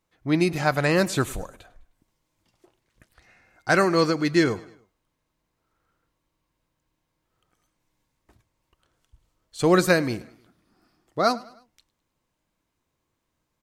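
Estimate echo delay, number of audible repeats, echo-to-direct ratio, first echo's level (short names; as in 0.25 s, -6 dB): 0.103 s, 3, -20.0 dB, -21.0 dB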